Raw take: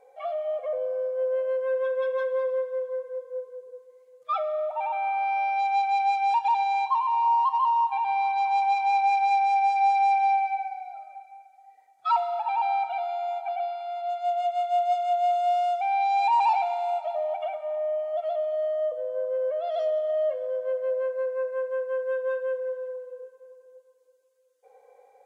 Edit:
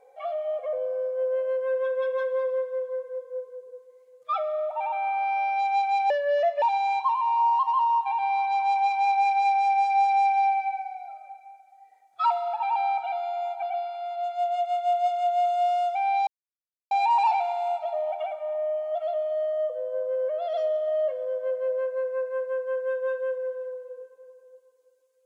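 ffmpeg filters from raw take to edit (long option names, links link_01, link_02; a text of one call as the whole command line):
ffmpeg -i in.wav -filter_complex "[0:a]asplit=4[link_01][link_02][link_03][link_04];[link_01]atrim=end=6.104[link_05];[link_02]atrim=start=6.1:end=6.48,asetpts=PTS-STARTPTS,asetrate=32193,aresample=44100,atrim=end_sample=22956,asetpts=PTS-STARTPTS[link_06];[link_03]atrim=start=6.476:end=16.13,asetpts=PTS-STARTPTS,afade=type=out:start_time=9.65:duration=0.004:curve=hsin,apad=pad_dur=0.64[link_07];[link_04]atrim=start=16.13,asetpts=PTS-STARTPTS,afade=type=in:duration=0.004:curve=hsin[link_08];[link_05][link_06]acrossfade=duration=0.004:curve1=hsin:curve2=hsin[link_09];[link_07][link_08]concat=n=2:v=0:a=1[link_10];[link_09][link_10]acrossfade=duration=0.004:curve1=hsin:curve2=hsin" out.wav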